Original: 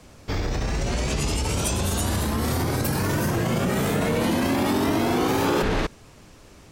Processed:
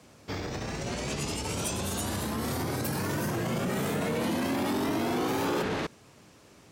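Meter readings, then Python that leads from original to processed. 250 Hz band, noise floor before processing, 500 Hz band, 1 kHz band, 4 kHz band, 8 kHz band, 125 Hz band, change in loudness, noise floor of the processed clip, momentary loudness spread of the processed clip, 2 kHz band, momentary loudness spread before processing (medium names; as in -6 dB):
-6.5 dB, -49 dBFS, -6.0 dB, -6.0 dB, -6.0 dB, -6.0 dB, -9.0 dB, -6.5 dB, -56 dBFS, 6 LU, -6.0 dB, 5 LU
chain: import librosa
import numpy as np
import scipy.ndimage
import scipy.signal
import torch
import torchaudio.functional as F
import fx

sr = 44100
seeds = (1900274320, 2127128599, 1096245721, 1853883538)

y = scipy.signal.sosfilt(scipy.signal.butter(2, 110.0, 'highpass', fs=sr, output='sos'), x)
y = 10.0 ** (-16.0 / 20.0) * np.tanh(y / 10.0 ** (-16.0 / 20.0))
y = y * librosa.db_to_amplitude(-5.0)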